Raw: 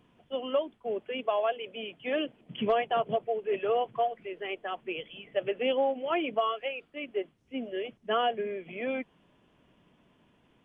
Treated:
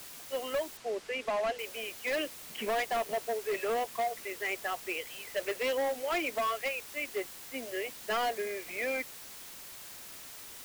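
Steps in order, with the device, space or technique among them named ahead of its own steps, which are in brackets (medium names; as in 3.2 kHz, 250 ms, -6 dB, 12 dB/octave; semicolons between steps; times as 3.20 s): drive-through speaker (band-pass 400–2800 Hz; peaking EQ 2 kHz +10 dB 0.59 oct; hard clipper -27.5 dBFS, distortion -10 dB; white noise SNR 12 dB); 0.77–1.59 s: distance through air 62 m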